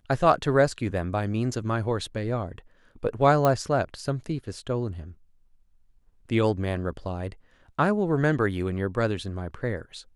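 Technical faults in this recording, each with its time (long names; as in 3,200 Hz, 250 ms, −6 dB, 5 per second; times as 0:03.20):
0:03.45: click −10 dBFS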